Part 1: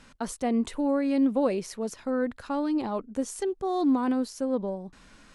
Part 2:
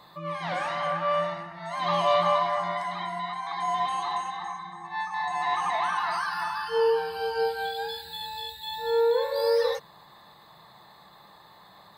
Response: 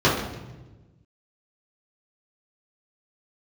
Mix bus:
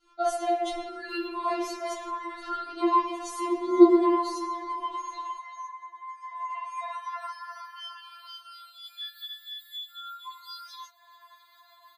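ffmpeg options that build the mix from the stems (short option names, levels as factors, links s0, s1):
-filter_complex "[0:a]agate=range=0.0224:threshold=0.00562:ratio=3:detection=peak,equalizer=f=3100:w=0.33:g=6.5,volume=0.501,asplit=2[s0][s1];[s1]volume=0.335[s2];[1:a]highpass=f=790:w=0.5412,highpass=f=790:w=1.3066,acompressor=threshold=0.00251:ratio=1.5,adelay=1100,volume=1.12[s3];[2:a]atrim=start_sample=2205[s4];[s2][s4]afir=irnorm=-1:irlink=0[s5];[s0][s3][s5]amix=inputs=3:normalize=0,afftfilt=real='re*4*eq(mod(b,16),0)':imag='im*4*eq(mod(b,16),0)':win_size=2048:overlap=0.75"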